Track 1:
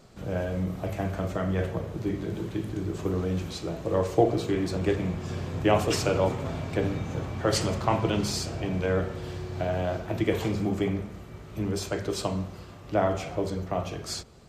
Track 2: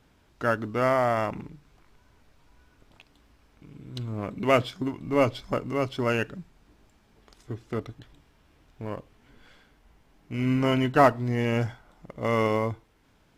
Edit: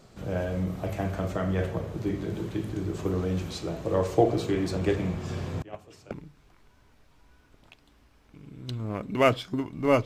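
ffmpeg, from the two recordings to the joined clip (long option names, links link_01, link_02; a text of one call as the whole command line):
ffmpeg -i cue0.wav -i cue1.wav -filter_complex "[0:a]asettb=1/sr,asplit=3[link_01][link_02][link_03];[link_01]atrim=end=5.624[link_04];[link_02]atrim=start=5.62:end=6.11,asetpts=PTS-STARTPTS,afade=type=in:duration=0.004:curve=qsin,afade=type=out:start_time=0.486:duration=0.004:curve=qsin,agate=range=-26dB:threshold=-17dB:ratio=16:release=100:detection=peak[link_05];[link_03]atrim=start=6.106[link_06];[link_04][link_05]acrossfade=duration=0.004:curve1=hsin:curve2=qsin[link_07];[link_07][link_06]acrossfade=duration=0.004:curve1=qsin:curve2=hsin,apad=whole_dur=10.05,atrim=end=10.05,atrim=end=6.112[link_08];[1:a]atrim=start=1.388:end=5.33[link_09];[link_08][link_09]acrossfade=duration=0.004:curve1=hsin:curve2=hsin" out.wav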